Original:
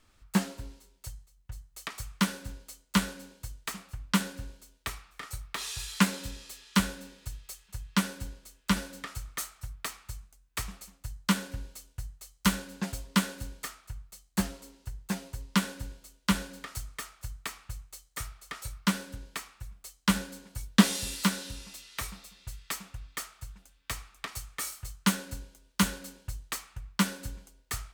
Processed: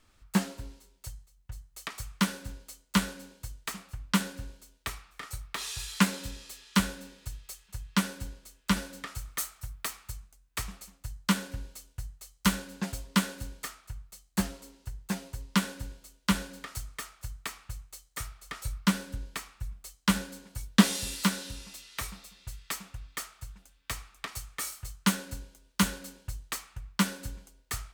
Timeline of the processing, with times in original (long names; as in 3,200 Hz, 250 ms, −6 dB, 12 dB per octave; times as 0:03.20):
0:09.18–0:10.12: high-shelf EQ 10,000 Hz +6.5 dB
0:18.41–0:19.95: low-shelf EQ 130 Hz +7 dB